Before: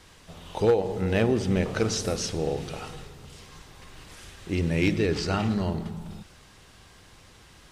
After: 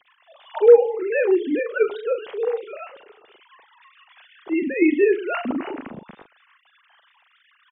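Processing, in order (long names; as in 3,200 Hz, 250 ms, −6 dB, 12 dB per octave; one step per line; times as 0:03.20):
three sine waves on the formant tracks
double-tracking delay 40 ms −9.5 dB
level +5 dB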